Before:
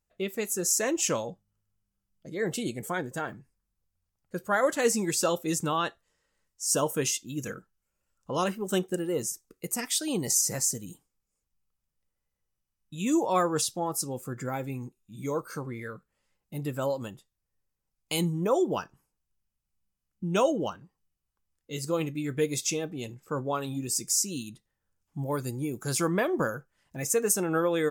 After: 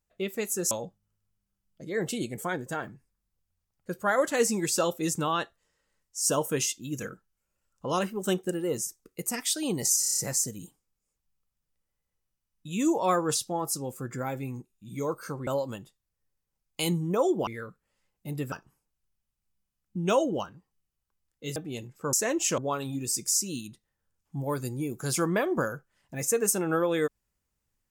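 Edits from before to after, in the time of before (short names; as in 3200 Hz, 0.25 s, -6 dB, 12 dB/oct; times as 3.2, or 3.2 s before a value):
0.71–1.16 move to 23.4
10.45 stutter 0.03 s, 7 plays
15.74–16.79 move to 18.79
21.83–22.83 cut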